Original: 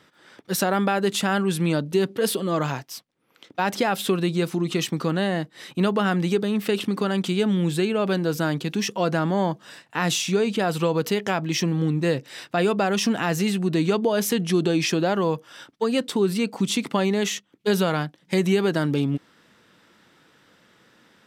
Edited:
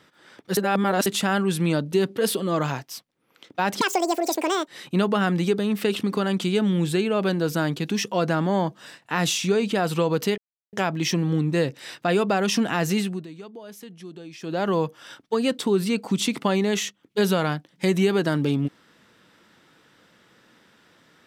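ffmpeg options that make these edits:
-filter_complex "[0:a]asplit=8[s0][s1][s2][s3][s4][s5][s6][s7];[s0]atrim=end=0.572[s8];[s1]atrim=start=0.568:end=1.062,asetpts=PTS-STARTPTS,areverse[s9];[s2]atrim=start=1.058:end=3.814[s10];[s3]atrim=start=3.81:end=5.52,asetpts=PTS-STARTPTS,asetrate=86877,aresample=44100[s11];[s4]atrim=start=5.516:end=11.22,asetpts=PTS-STARTPTS,afade=t=out:st=5.7:d=0.004:c=hsin,apad=pad_dur=0.35[s12];[s5]atrim=start=11.22:end=13.76,asetpts=PTS-STARTPTS,afade=t=in:d=0.004:c=hsin,afade=t=out:st=2.25:d=0.29:silence=0.112202[s13];[s6]atrim=start=13.76:end=14.89,asetpts=PTS-STARTPTS,volume=0.112[s14];[s7]atrim=start=14.89,asetpts=PTS-STARTPTS,afade=t=in:d=0.29:silence=0.112202[s15];[s8][s9]acrossfade=d=0.004:c1=hsin:c2=hsin[s16];[s16][s10]acrossfade=d=0.004:c1=hsin:c2=hsin[s17];[s17][s11]acrossfade=d=0.004:c1=hsin:c2=hsin[s18];[s12][s13][s14][s15]concat=n=4:v=0:a=1[s19];[s18][s19]acrossfade=d=0.004:c1=hsin:c2=hsin"

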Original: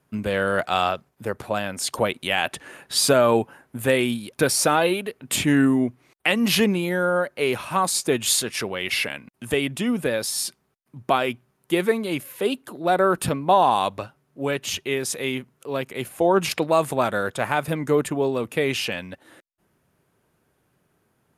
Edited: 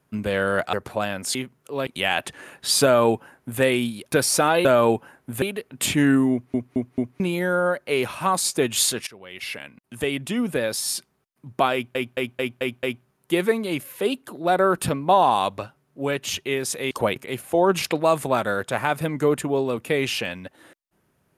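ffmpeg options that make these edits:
-filter_complex "[0:a]asplit=18[s0][s1][s2][s3][s4][s5][s6][s7][s8][s9][s10][s11][s12][s13][s14][s15][s16][s17];[s0]atrim=end=0.732[s18];[s1]atrim=start=1.268:end=1.892[s19];[s2]atrim=start=15.308:end=15.832[s20];[s3]atrim=start=2.138:end=4.922[s21];[s4]atrim=start=3.108:end=3.882[s22];[s5]atrim=start=4.918:end=6.042[s23];[s6]atrim=start=5.818:end=6.042[s24];[s7]atrim=start=5.818:end=6.042[s25];[s8]atrim=start=5.818:end=6.042[s26];[s9]atrim=start=6.698:end=8.57,asetpts=PTS-STARTPTS,afade=t=out:st=1.868:d=0.004:c=hsin:silence=0.0794328[s27];[s10]atrim=start=8.57:end=11.452,asetpts=PTS-STARTPTS,afade=t=in:d=1.89:c=qsin:silence=0.0794328[s28];[s11]atrim=start=11.228:end=11.452[s29];[s12]atrim=start=11.228:end=11.452[s30];[s13]atrim=start=11.228:end=11.452[s31];[s14]atrim=start=11.228:end=11.452[s32];[s15]atrim=start=11.228:end=15.312[s33];[s16]atrim=start=1.888:end=2.142[s34];[s17]atrim=start=15.828[s35];[s18][s19]acrossfade=d=0.004:c1=hsin:c2=hsin[s36];[s36][s20]acrossfade=d=0.004:c1=hsin:c2=hsin[s37];[s37][s21]acrossfade=d=0.004:c1=hsin:c2=hsin[s38];[s38][s22]acrossfade=d=0.004:c1=hsin:c2=hsin[s39];[s39][s23]acrossfade=d=0.004:c1=hsin:c2=hsin[s40];[s40][s24]acrossfade=d=0.004:c1=hsin:c2=hsin[s41];[s41][s25]acrossfade=d=0.004:c1=hsin:c2=hsin[s42];[s42][s26]acrossfade=d=0.004:c1=hsin:c2=hsin[s43];[s27][s28]concat=n=2:v=0:a=1[s44];[s43][s44]acrossfade=d=0.004:c1=hsin:c2=hsin[s45];[s45][s29]acrossfade=d=0.004:c1=hsin:c2=hsin[s46];[s46][s30]acrossfade=d=0.004:c1=hsin:c2=hsin[s47];[s47][s31]acrossfade=d=0.004:c1=hsin:c2=hsin[s48];[s48][s32]acrossfade=d=0.004:c1=hsin:c2=hsin[s49];[s49][s33]acrossfade=d=0.004:c1=hsin:c2=hsin[s50];[s50][s34]acrossfade=d=0.004:c1=hsin:c2=hsin[s51];[s51][s35]acrossfade=d=0.004:c1=hsin:c2=hsin"

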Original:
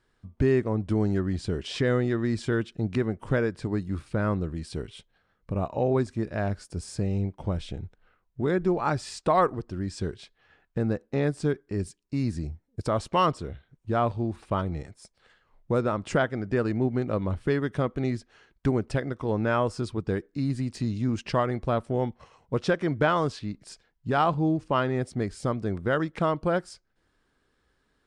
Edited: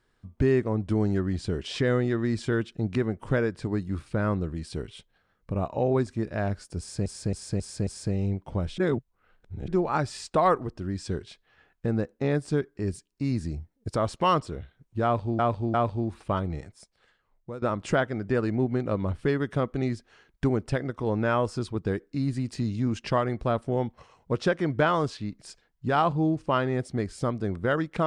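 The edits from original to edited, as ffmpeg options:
-filter_complex "[0:a]asplit=10[s0][s1][s2][s3][s4][s5][s6][s7][s8][s9];[s0]atrim=end=7.062[s10];[s1]atrim=start=6.788:end=7.062[s11];[s2]atrim=start=6.788:end=7.062[s12];[s3]atrim=start=6.788:end=7.062[s13];[s4]atrim=start=6.788:end=7.702[s14];[s5]atrim=start=7.698:end=8.602,asetpts=PTS-STARTPTS,areverse[s15];[s6]atrim=start=8.598:end=14.312[s16];[s7]atrim=start=13.958:end=14.312[s17];[s8]atrim=start=13.958:end=15.84,asetpts=PTS-STARTPTS,afade=t=out:st=0.882:d=1:silence=0.158489[s18];[s9]atrim=start=15.84,asetpts=PTS-STARTPTS,afade=t=in:d=0.004:c=hsin:silence=0.158489[s19];[s10][s11]acrossfade=d=0.004:c1=hsin:c2=hsin[s20];[s20][s12]acrossfade=d=0.004:c1=hsin:c2=hsin[s21];[s21][s13]acrossfade=d=0.004:c1=hsin:c2=hsin[s22];[s22][s14]acrossfade=d=0.004:c1=hsin:c2=hsin[s23];[s23][s15]acrossfade=d=0.004:c1=hsin:c2=hsin[s24];[s24][s16]acrossfade=d=0.004:c1=hsin:c2=hsin[s25];[s25][s17]acrossfade=d=0.004:c1=hsin:c2=hsin[s26];[s18][s19]concat=n=2:v=0:a=1[s27];[s26][s27]acrossfade=d=0.004:c1=hsin:c2=hsin"

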